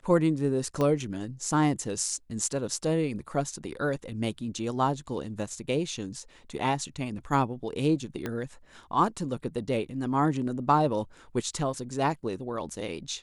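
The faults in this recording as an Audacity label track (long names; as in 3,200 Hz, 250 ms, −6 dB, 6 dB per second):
0.810000	0.810000	click −16 dBFS
8.260000	8.260000	click −18 dBFS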